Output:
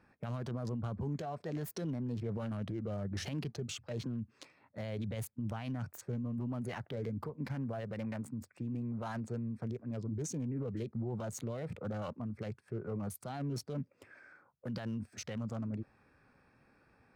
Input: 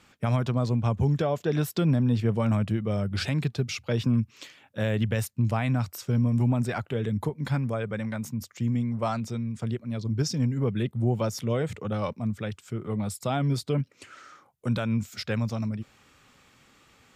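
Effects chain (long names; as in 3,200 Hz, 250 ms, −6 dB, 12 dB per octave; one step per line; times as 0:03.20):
adaptive Wiener filter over 15 samples
brickwall limiter −26 dBFS, peak gain reduction 11 dB
formants moved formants +3 semitones
level −5 dB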